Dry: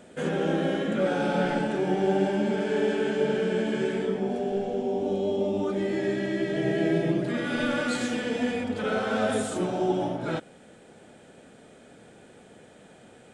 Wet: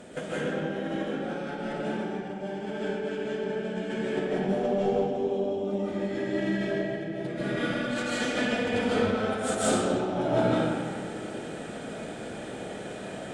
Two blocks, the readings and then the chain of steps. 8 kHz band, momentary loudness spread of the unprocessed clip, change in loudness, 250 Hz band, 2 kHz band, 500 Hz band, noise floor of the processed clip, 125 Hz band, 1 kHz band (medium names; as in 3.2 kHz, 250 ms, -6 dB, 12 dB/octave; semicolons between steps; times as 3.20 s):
+4.0 dB, 4 LU, -2.5 dB, -2.0 dB, -1.0 dB, -2.0 dB, -38 dBFS, -2.0 dB, -1.0 dB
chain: compressor with a negative ratio -33 dBFS, ratio -0.5; algorithmic reverb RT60 2 s, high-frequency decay 0.7×, pre-delay 110 ms, DRR -10 dB; Chebyshev shaper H 4 -28 dB, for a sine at -8 dBFS; trim -4.5 dB